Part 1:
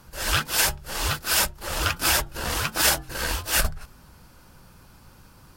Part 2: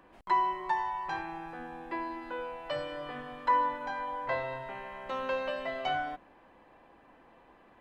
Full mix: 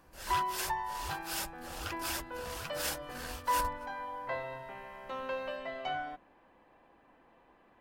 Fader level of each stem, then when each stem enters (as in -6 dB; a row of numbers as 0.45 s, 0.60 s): -16.0 dB, -4.5 dB; 0.00 s, 0.00 s